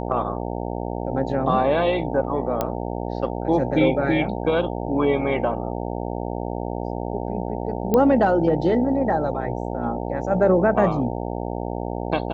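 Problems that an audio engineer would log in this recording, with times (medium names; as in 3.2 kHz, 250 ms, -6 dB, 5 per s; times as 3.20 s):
buzz 60 Hz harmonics 15 -28 dBFS
2.61 s: pop -9 dBFS
7.94 s: pop -8 dBFS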